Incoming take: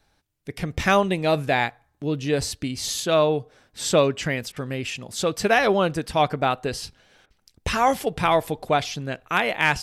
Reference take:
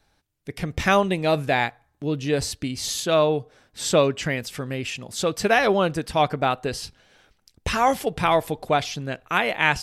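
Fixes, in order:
clipped peaks rebuilt −7 dBFS
repair the gap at 0:04.52/0:07.26, 42 ms

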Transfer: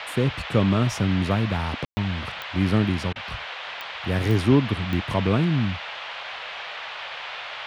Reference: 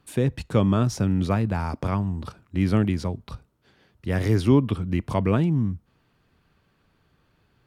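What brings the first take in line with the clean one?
click removal
ambience match 0:01.85–0:01.97
repair the gap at 0:03.13, 26 ms
noise reduction from a noise print 30 dB

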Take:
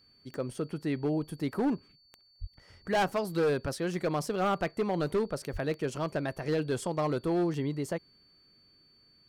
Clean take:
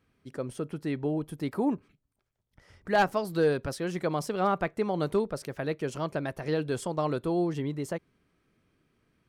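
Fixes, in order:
clipped peaks rebuilt −23 dBFS
click removal
notch filter 4,500 Hz, Q 30
0:02.40–0:02.52: high-pass filter 140 Hz 24 dB per octave
0:05.52–0:05.64: high-pass filter 140 Hz 24 dB per octave

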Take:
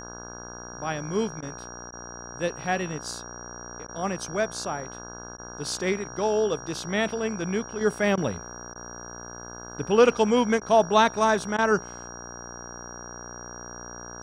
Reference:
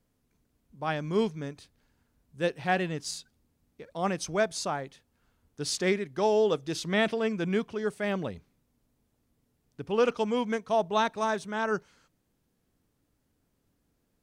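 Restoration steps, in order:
hum removal 59.8 Hz, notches 28
notch filter 5,700 Hz, Q 30
repair the gap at 0:01.41/0:01.91/0:03.87/0:05.37/0:08.16/0:08.74/0:10.60/0:11.57, 13 ms
level correction −7 dB, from 0:07.81

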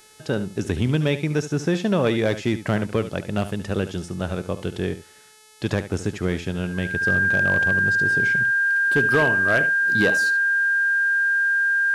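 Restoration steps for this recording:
clipped peaks rebuilt −11.5 dBFS
hum removal 431.6 Hz, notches 27
notch filter 1,600 Hz, Q 30
echo removal 72 ms −13 dB

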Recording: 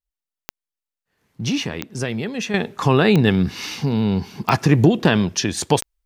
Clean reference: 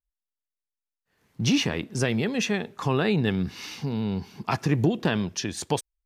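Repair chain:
click removal
level 0 dB, from 0:02.54 −8.5 dB

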